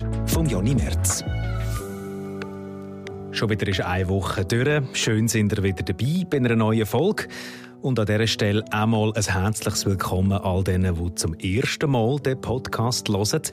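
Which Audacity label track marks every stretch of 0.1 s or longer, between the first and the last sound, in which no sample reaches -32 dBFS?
7.640000	7.840000	silence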